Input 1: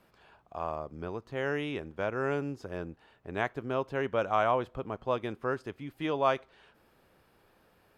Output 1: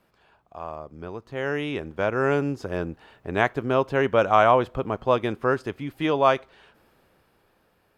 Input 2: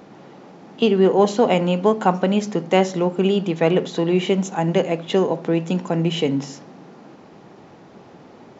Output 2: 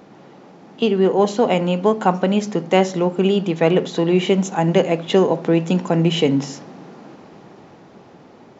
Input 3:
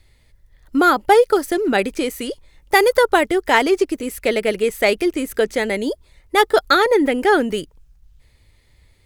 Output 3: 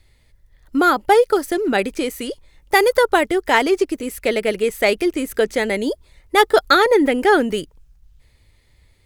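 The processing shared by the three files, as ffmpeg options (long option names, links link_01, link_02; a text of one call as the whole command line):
ffmpeg -i in.wav -af "dynaudnorm=framelen=310:gausssize=11:maxgain=11.5dB,volume=-1dB" out.wav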